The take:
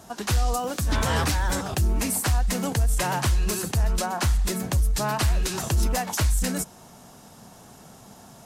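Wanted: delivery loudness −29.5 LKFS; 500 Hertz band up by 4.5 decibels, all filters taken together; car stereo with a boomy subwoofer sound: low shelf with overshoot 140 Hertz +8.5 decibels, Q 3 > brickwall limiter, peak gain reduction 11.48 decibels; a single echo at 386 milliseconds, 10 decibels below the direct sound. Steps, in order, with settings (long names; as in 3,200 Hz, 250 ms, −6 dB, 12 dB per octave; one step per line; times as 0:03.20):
low shelf with overshoot 140 Hz +8.5 dB, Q 3
parametric band 500 Hz +6.5 dB
single-tap delay 386 ms −10 dB
level −8 dB
brickwall limiter −20 dBFS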